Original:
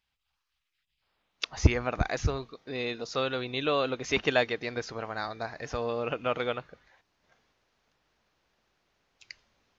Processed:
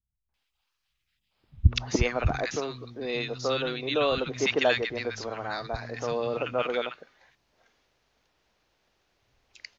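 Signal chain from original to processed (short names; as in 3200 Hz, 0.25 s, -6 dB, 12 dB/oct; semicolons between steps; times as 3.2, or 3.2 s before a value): three bands offset in time lows, mids, highs 0.29/0.34 s, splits 190/1300 Hz; gain +3 dB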